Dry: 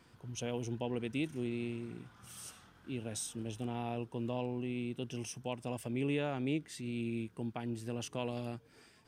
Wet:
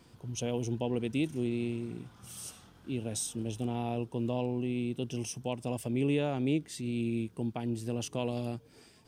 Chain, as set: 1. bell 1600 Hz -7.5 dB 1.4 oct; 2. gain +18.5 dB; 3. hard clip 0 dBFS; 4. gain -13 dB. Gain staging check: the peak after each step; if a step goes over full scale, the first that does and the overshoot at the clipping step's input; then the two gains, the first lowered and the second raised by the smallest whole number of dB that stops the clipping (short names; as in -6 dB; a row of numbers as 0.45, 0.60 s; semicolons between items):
-24.0, -5.5, -5.5, -18.5 dBFS; no overload